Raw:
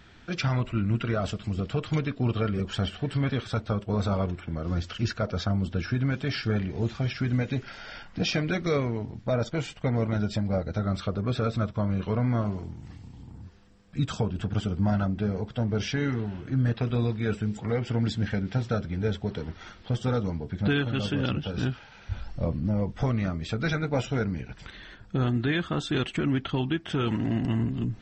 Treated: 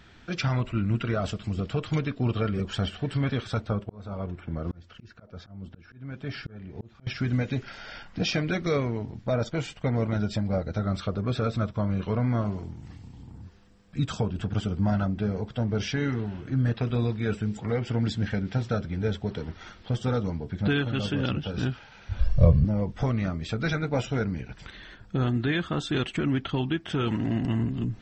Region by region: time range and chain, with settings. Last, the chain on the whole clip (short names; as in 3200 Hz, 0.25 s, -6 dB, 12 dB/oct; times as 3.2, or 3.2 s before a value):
3.67–7.07 high shelf 3300 Hz -10 dB + auto swell 0.62 s
22.19–22.65 low shelf 250 Hz +10 dB + comb 1.8 ms, depth 99%
whole clip: dry